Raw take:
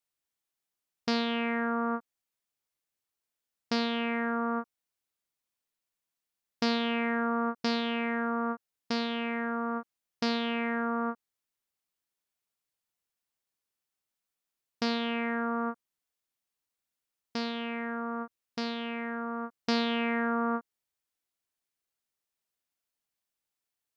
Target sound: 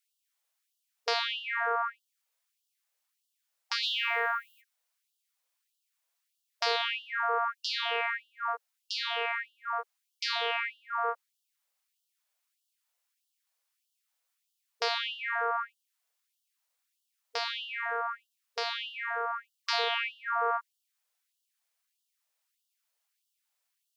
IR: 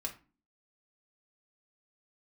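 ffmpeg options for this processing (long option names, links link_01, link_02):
-filter_complex "[0:a]asplit=3[link_01][link_02][link_03];[link_01]afade=type=out:start_time=3.82:duration=0.02[link_04];[link_02]aemphasis=mode=production:type=75fm,afade=type=in:start_time=3.82:duration=0.02,afade=type=out:start_time=4.6:duration=0.02[link_05];[link_03]afade=type=in:start_time=4.6:duration=0.02[link_06];[link_04][link_05][link_06]amix=inputs=3:normalize=0,asplit=2[link_07][link_08];[link_08]alimiter=level_in=2.5dB:limit=-24dB:level=0:latency=1:release=30,volume=-2.5dB,volume=-2dB[link_09];[link_07][link_09]amix=inputs=2:normalize=0,afftfilt=real='re*gte(b*sr/1024,430*pow(2800/430,0.5+0.5*sin(2*PI*1.6*pts/sr)))':imag='im*gte(b*sr/1024,430*pow(2800/430,0.5+0.5*sin(2*PI*1.6*pts/sr)))':win_size=1024:overlap=0.75,volume=1.5dB"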